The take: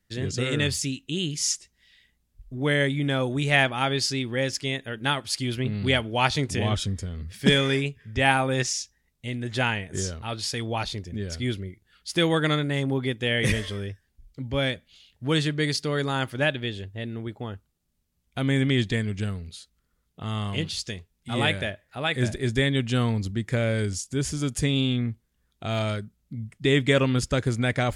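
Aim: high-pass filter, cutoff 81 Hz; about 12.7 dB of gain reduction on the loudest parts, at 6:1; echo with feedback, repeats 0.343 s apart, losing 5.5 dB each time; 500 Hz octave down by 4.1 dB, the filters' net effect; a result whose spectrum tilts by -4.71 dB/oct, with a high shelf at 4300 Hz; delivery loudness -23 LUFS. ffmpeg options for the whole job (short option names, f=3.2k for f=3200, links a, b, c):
-af "highpass=81,equalizer=f=500:t=o:g=-5,highshelf=f=4.3k:g=-6,acompressor=threshold=-30dB:ratio=6,aecho=1:1:343|686|1029|1372|1715|2058|2401:0.531|0.281|0.149|0.079|0.0419|0.0222|0.0118,volume=10.5dB"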